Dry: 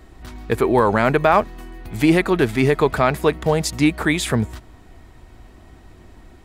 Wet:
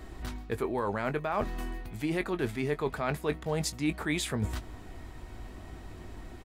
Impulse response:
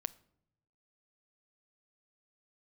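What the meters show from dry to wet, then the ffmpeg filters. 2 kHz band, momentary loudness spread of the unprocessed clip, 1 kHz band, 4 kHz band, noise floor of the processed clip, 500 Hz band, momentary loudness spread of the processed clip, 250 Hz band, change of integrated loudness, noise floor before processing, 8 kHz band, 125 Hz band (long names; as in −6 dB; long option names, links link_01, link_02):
−13.5 dB, 7 LU, −15.0 dB, −11.0 dB, −47 dBFS, −14.0 dB, 16 LU, −14.0 dB, −14.5 dB, −46 dBFS, −9.0 dB, −12.0 dB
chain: -filter_complex "[0:a]areverse,acompressor=threshold=-29dB:ratio=6,areverse,asplit=2[link_01][link_02];[link_02]adelay=20,volume=-12dB[link_03];[link_01][link_03]amix=inputs=2:normalize=0"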